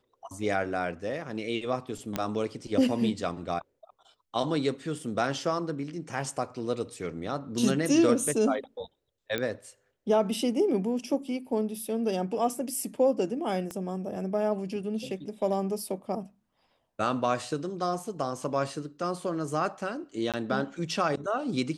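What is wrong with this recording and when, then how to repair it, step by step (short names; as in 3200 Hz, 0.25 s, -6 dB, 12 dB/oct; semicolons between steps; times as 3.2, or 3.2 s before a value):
2.16 pop -14 dBFS
9.38 pop -16 dBFS
13.71 pop -23 dBFS
20.32–20.34 gap 17 ms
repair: de-click; interpolate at 20.32, 17 ms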